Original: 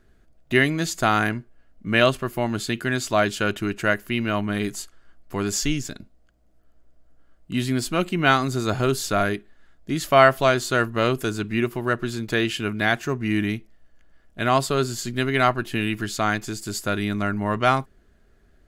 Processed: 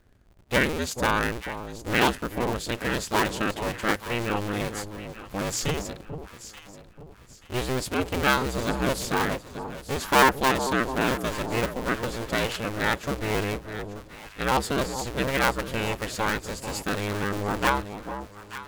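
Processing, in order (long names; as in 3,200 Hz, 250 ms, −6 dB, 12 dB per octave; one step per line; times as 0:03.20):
sub-harmonics by changed cycles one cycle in 2, inverted
delay that swaps between a low-pass and a high-pass 441 ms, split 970 Hz, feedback 58%, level −8.5 dB
level −4 dB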